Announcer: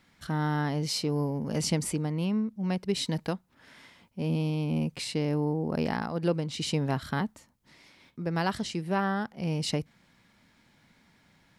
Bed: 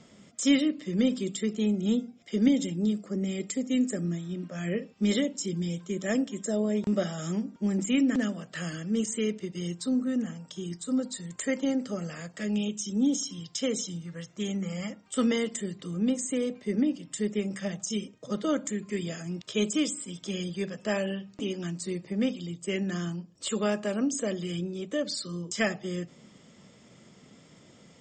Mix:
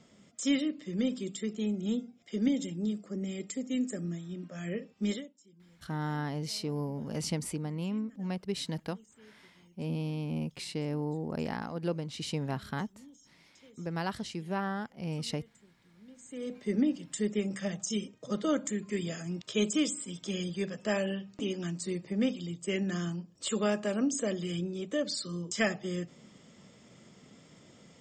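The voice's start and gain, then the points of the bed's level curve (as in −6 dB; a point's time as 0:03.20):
5.60 s, −5.5 dB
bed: 0:05.10 −5.5 dB
0:05.36 −29 dB
0:16.06 −29 dB
0:16.57 −1.5 dB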